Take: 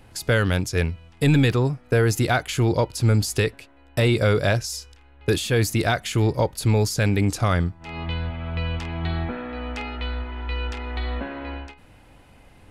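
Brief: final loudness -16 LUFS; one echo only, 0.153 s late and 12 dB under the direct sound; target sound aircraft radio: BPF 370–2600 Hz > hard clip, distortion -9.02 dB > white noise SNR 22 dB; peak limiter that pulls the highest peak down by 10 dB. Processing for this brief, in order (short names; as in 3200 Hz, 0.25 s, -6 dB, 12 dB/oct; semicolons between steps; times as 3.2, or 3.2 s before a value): limiter -19.5 dBFS; BPF 370–2600 Hz; echo 0.153 s -12 dB; hard clip -32 dBFS; white noise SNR 22 dB; gain +21.5 dB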